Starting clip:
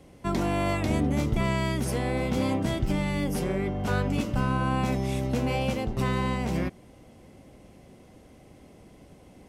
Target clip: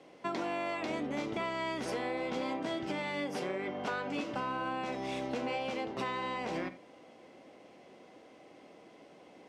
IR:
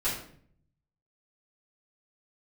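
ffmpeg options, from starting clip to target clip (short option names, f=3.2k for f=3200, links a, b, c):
-filter_complex "[0:a]highpass=370,lowpass=4.8k,asplit=2[a][b];[1:a]atrim=start_sample=2205,atrim=end_sample=3969[c];[b][c]afir=irnorm=-1:irlink=0,volume=-17dB[d];[a][d]amix=inputs=2:normalize=0,acompressor=threshold=-32dB:ratio=6"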